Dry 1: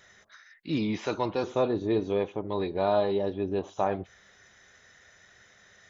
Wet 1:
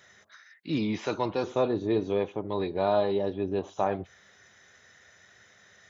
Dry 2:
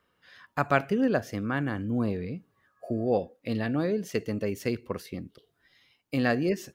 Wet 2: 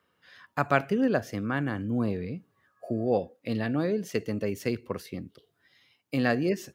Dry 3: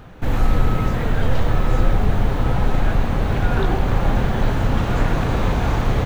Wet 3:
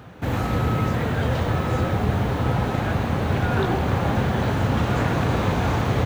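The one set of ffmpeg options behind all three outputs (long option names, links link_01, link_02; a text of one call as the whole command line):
ffmpeg -i in.wav -af "highpass=frequency=71:width=0.5412,highpass=frequency=71:width=1.3066" out.wav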